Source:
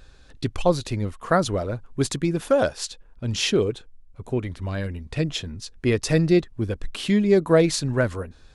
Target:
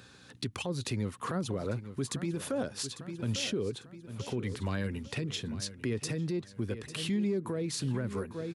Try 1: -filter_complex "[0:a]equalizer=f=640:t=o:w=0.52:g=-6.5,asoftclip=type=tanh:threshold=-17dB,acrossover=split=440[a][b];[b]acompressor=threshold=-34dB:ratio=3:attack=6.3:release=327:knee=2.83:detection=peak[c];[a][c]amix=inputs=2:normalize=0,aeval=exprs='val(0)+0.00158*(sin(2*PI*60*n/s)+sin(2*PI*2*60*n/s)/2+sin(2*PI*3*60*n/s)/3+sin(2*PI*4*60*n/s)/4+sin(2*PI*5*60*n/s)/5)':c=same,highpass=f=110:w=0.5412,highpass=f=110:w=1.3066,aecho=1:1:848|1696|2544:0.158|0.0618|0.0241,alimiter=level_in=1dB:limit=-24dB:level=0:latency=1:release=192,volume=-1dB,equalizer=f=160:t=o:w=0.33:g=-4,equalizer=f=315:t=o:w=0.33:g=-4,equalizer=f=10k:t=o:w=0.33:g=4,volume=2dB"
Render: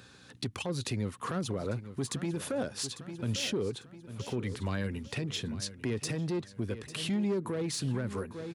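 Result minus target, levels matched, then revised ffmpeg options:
soft clip: distortion +14 dB
-filter_complex "[0:a]equalizer=f=640:t=o:w=0.52:g=-6.5,asoftclip=type=tanh:threshold=-7dB,acrossover=split=440[a][b];[b]acompressor=threshold=-34dB:ratio=3:attack=6.3:release=327:knee=2.83:detection=peak[c];[a][c]amix=inputs=2:normalize=0,aeval=exprs='val(0)+0.00158*(sin(2*PI*60*n/s)+sin(2*PI*2*60*n/s)/2+sin(2*PI*3*60*n/s)/3+sin(2*PI*4*60*n/s)/4+sin(2*PI*5*60*n/s)/5)':c=same,highpass=f=110:w=0.5412,highpass=f=110:w=1.3066,aecho=1:1:848|1696|2544:0.158|0.0618|0.0241,alimiter=level_in=1dB:limit=-24dB:level=0:latency=1:release=192,volume=-1dB,equalizer=f=160:t=o:w=0.33:g=-4,equalizer=f=315:t=o:w=0.33:g=-4,equalizer=f=10k:t=o:w=0.33:g=4,volume=2dB"

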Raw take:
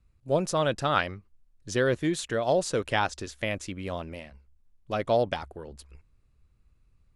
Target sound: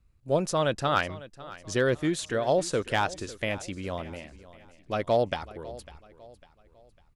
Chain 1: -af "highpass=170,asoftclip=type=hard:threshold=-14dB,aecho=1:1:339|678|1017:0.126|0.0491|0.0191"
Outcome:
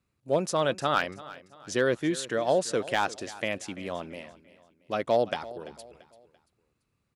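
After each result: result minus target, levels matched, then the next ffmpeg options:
echo 0.212 s early; 125 Hz band -5.0 dB
-af "highpass=170,asoftclip=type=hard:threshold=-14dB,aecho=1:1:551|1102|1653:0.126|0.0491|0.0191"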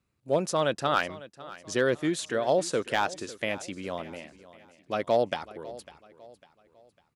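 125 Hz band -5.0 dB
-af "asoftclip=type=hard:threshold=-14dB,aecho=1:1:551|1102|1653:0.126|0.0491|0.0191"

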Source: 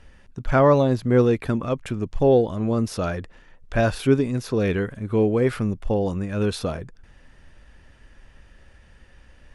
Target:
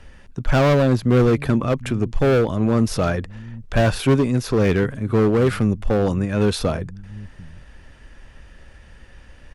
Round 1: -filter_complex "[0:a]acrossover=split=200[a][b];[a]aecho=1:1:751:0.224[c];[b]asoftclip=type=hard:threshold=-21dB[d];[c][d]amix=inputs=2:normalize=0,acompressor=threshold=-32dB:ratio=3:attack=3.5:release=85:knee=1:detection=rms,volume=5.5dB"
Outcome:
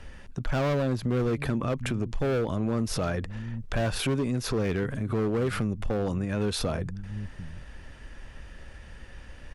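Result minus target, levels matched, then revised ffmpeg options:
compressor: peak gain reduction +12 dB
-filter_complex "[0:a]acrossover=split=200[a][b];[a]aecho=1:1:751:0.224[c];[b]asoftclip=type=hard:threshold=-21dB[d];[c][d]amix=inputs=2:normalize=0,volume=5.5dB"

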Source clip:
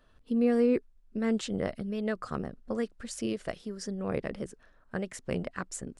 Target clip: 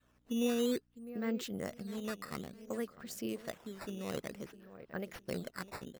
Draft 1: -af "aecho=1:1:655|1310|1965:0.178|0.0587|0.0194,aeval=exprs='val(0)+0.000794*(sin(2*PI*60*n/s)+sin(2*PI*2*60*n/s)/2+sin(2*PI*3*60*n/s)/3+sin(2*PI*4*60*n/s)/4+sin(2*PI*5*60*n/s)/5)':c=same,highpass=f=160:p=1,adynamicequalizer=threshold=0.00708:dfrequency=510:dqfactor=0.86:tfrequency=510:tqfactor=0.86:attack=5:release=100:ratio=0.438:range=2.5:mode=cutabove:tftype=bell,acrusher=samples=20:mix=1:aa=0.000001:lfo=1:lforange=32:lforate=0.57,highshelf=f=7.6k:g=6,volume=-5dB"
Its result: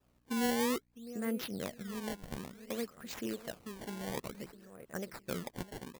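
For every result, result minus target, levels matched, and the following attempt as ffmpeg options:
decimation with a swept rate: distortion +8 dB; 8000 Hz band +2.5 dB
-af "aecho=1:1:655|1310|1965:0.178|0.0587|0.0194,aeval=exprs='val(0)+0.000794*(sin(2*PI*60*n/s)+sin(2*PI*2*60*n/s)/2+sin(2*PI*3*60*n/s)/3+sin(2*PI*4*60*n/s)/4+sin(2*PI*5*60*n/s)/5)':c=same,highpass=f=160:p=1,adynamicequalizer=threshold=0.00708:dfrequency=510:dqfactor=0.86:tfrequency=510:tqfactor=0.86:attack=5:release=100:ratio=0.438:range=2.5:mode=cutabove:tftype=bell,acrusher=samples=8:mix=1:aa=0.000001:lfo=1:lforange=12.8:lforate=0.57,highshelf=f=7.6k:g=6,volume=-5dB"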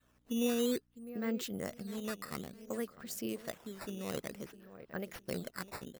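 8000 Hz band +2.5 dB
-af "aecho=1:1:655|1310|1965:0.178|0.0587|0.0194,aeval=exprs='val(0)+0.000794*(sin(2*PI*60*n/s)+sin(2*PI*2*60*n/s)/2+sin(2*PI*3*60*n/s)/3+sin(2*PI*4*60*n/s)/4+sin(2*PI*5*60*n/s)/5)':c=same,highpass=f=160:p=1,adynamicequalizer=threshold=0.00708:dfrequency=510:dqfactor=0.86:tfrequency=510:tqfactor=0.86:attack=5:release=100:ratio=0.438:range=2.5:mode=cutabove:tftype=bell,acrusher=samples=8:mix=1:aa=0.000001:lfo=1:lforange=12.8:lforate=0.57,volume=-5dB"

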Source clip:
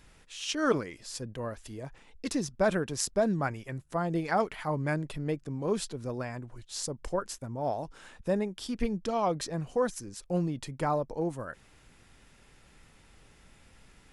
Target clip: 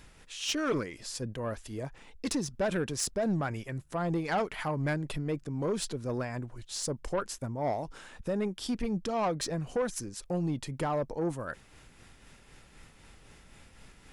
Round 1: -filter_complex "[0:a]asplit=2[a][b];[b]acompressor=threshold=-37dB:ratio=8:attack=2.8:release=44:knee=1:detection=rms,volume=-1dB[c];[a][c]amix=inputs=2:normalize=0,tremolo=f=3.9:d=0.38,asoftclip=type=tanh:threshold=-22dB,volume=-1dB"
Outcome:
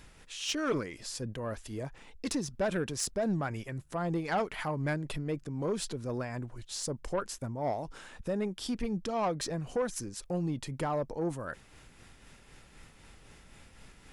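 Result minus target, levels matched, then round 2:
compressor: peak gain reduction +7 dB
-filter_complex "[0:a]asplit=2[a][b];[b]acompressor=threshold=-29dB:ratio=8:attack=2.8:release=44:knee=1:detection=rms,volume=-1dB[c];[a][c]amix=inputs=2:normalize=0,tremolo=f=3.9:d=0.38,asoftclip=type=tanh:threshold=-22dB,volume=-1dB"

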